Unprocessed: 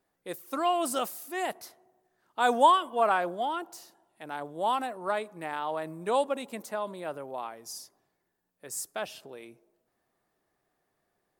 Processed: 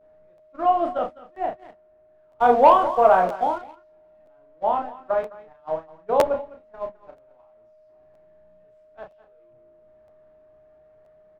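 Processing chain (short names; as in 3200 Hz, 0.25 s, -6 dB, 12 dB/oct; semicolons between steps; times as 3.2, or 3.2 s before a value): delta modulation 64 kbps, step -32.5 dBFS; shoebox room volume 170 m³, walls furnished, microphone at 0.51 m; gate -29 dBFS, range -29 dB; LPF 1500 Hz 12 dB/oct; low shelf 91 Hz +10 dB; echo 0.209 s -16 dB; vibrato 0.37 Hz 34 cents; whine 620 Hz -55 dBFS; doubler 32 ms -5 dB; 1.56–3.76 sample leveller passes 1; dynamic EQ 650 Hz, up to +8 dB, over -38 dBFS, Q 2.2; crackling interface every 0.97 s, samples 512, repeat, from 0.37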